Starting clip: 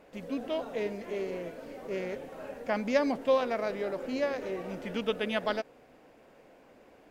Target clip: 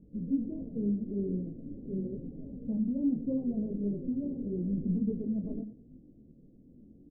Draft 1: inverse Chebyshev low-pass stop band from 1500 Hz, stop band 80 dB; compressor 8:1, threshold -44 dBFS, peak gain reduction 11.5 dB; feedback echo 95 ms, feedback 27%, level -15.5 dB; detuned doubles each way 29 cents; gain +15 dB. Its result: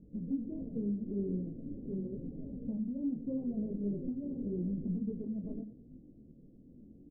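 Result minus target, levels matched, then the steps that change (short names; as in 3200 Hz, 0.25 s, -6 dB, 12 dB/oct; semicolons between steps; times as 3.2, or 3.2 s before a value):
compressor: peak gain reduction +6 dB
change: compressor 8:1, threshold -37 dBFS, peak gain reduction 5 dB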